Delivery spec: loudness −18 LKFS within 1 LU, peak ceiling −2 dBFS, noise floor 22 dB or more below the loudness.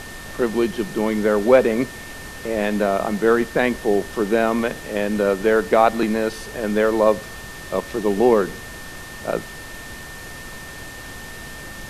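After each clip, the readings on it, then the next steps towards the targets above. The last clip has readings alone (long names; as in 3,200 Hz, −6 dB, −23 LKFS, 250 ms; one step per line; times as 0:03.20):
interfering tone 1,800 Hz; level of the tone −38 dBFS; background noise floor −36 dBFS; target noise floor −43 dBFS; integrated loudness −20.5 LKFS; sample peak −1.5 dBFS; target loudness −18.0 LKFS
→ notch filter 1,800 Hz, Q 30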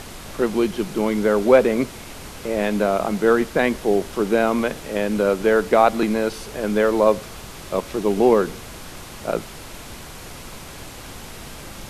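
interfering tone none found; background noise floor −38 dBFS; target noise floor −43 dBFS
→ noise reduction from a noise print 6 dB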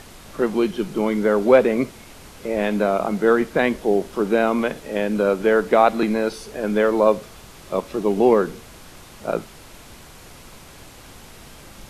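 background noise floor −44 dBFS; integrated loudness −20.5 LKFS; sample peak −1.5 dBFS; target loudness −18.0 LKFS
→ level +2.5 dB
brickwall limiter −2 dBFS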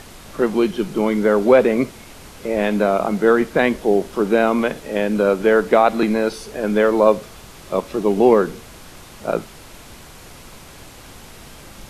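integrated loudness −18.0 LKFS; sample peak −2.0 dBFS; background noise floor −41 dBFS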